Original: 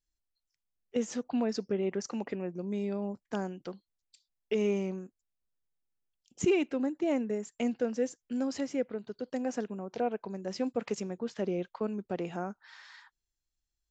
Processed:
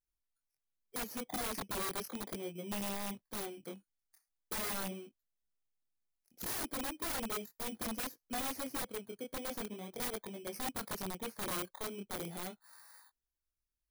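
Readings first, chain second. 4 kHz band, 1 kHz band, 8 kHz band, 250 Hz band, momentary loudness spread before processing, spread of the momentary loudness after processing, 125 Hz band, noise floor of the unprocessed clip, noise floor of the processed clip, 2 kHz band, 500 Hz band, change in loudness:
+3.5 dB, -1.0 dB, n/a, -11.5 dB, 10 LU, 8 LU, -8.0 dB, under -85 dBFS, under -85 dBFS, -0.5 dB, -12.0 dB, -6.0 dB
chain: FFT order left unsorted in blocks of 16 samples; chorus 0.38 Hz, delay 18.5 ms, depth 7.7 ms; wrapped overs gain 31 dB; gain -2 dB

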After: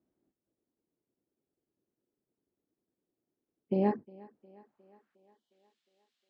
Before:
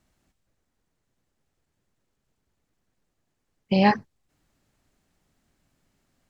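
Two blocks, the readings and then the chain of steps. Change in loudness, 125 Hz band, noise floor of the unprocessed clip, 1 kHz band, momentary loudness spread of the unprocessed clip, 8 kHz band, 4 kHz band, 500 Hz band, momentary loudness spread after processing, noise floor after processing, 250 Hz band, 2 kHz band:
-9.0 dB, -9.5 dB, -78 dBFS, -14.0 dB, 8 LU, n/a, under -25 dB, -5.0 dB, 8 LU, under -85 dBFS, -9.0 dB, -22.5 dB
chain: spectral gain 5.15–5.52, 1100–2900 Hz -26 dB; band-pass sweep 340 Hz -> 3500 Hz, 4.15–5.64; thinning echo 0.358 s, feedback 63%, high-pass 190 Hz, level -22 dB

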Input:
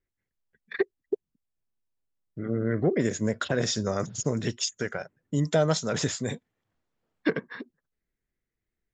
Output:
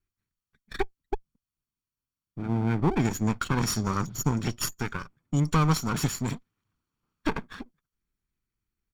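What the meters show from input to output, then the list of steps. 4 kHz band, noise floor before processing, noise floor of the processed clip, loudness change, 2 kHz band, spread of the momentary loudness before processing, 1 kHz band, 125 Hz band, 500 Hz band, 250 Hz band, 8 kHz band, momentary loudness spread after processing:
-2.5 dB, under -85 dBFS, under -85 dBFS, 0.0 dB, -1.0 dB, 14 LU, +6.0 dB, +3.5 dB, -7.5 dB, +1.0 dB, -0.5 dB, 14 LU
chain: minimum comb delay 0.7 ms; comb 0.9 ms, depth 39%

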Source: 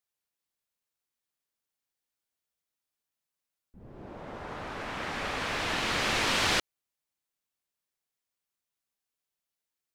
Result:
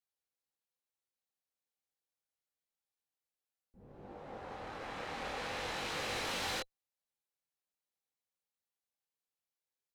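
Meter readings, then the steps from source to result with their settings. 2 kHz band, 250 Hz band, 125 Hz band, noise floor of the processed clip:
-10.5 dB, -10.0 dB, -10.0 dB, under -85 dBFS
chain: chorus 0.5 Hz, delay 20 ms, depth 6.8 ms; tube stage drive 32 dB, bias 0.5; small resonant body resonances 510/790/4000 Hz, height 8 dB, ringing for 40 ms; gain -3 dB

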